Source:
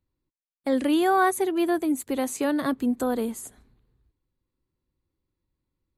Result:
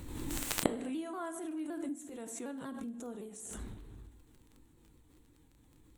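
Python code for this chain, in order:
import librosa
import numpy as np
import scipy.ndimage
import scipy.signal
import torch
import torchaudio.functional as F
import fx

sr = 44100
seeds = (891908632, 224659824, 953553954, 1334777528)

y = fx.pitch_ramps(x, sr, semitones=-3.0, every_ms=189)
y = fx.graphic_eq_31(y, sr, hz=(315, 5000, 8000), db=(6, -6, 8))
y = fx.gate_flip(y, sr, shuts_db=-28.0, range_db=-36)
y = fx.rev_double_slope(y, sr, seeds[0], early_s=0.58, late_s=1.9, knee_db=-18, drr_db=8.0)
y = fx.dmg_crackle(y, sr, seeds[1], per_s=16.0, level_db=-67.0)
y = fx.pre_swell(y, sr, db_per_s=31.0)
y = y * librosa.db_to_amplitude(16.0)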